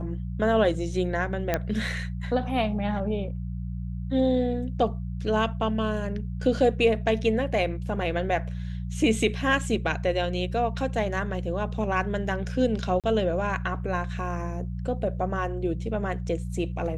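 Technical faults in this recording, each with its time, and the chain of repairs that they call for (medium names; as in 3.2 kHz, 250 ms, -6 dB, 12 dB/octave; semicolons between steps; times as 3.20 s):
hum 60 Hz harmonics 3 -32 dBFS
1.54 s: pop -10 dBFS
13.00–13.04 s: dropout 37 ms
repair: de-click; de-hum 60 Hz, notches 3; interpolate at 13.00 s, 37 ms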